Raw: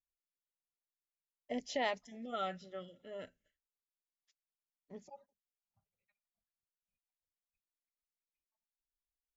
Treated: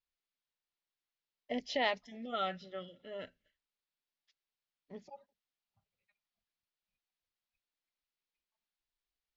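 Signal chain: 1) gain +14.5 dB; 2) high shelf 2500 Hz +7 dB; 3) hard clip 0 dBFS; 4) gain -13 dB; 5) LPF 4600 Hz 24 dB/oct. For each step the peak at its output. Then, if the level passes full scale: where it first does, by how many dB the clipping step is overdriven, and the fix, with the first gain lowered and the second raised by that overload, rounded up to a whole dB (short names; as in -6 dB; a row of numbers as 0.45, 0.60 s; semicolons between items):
-8.0, -5.0, -5.0, -18.0, -18.0 dBFS; no overload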